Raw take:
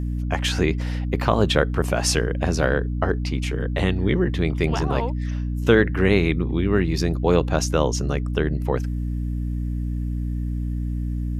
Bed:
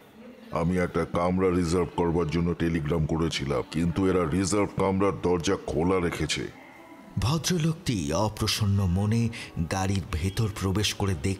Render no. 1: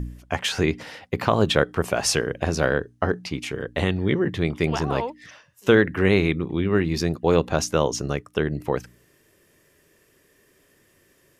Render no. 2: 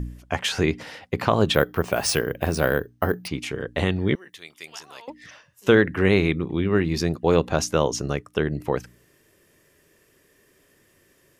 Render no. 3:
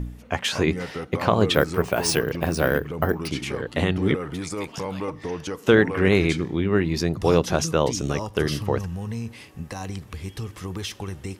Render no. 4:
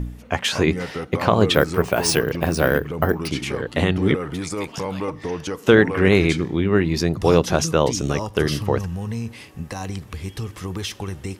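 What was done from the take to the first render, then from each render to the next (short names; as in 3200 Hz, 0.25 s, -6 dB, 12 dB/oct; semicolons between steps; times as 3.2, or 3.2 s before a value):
de-hum 60 Hz, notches 5
1.54–3.28 careless resampling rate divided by 3×, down filtered, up hold; 4.15–5.08 differentiator
add bed -6 dB
gain +3 dB; limiter -1 dBFS, peak gain reduction 1 dB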